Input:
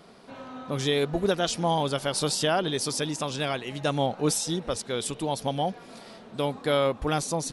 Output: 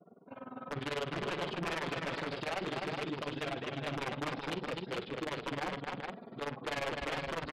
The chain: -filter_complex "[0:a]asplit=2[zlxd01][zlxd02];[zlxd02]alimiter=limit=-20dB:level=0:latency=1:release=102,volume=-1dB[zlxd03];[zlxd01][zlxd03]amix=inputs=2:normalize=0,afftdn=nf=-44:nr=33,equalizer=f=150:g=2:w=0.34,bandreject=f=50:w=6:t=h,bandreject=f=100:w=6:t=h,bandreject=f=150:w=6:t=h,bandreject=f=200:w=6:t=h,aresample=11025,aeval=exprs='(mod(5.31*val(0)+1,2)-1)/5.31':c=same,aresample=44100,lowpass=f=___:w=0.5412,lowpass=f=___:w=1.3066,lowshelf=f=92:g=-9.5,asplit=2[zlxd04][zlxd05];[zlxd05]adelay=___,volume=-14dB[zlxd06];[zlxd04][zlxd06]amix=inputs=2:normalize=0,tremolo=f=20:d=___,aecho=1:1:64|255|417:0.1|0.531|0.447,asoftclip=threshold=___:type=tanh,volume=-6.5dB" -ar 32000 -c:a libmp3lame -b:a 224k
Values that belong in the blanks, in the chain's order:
3100, 3100, 42, 0.947, -24.5dB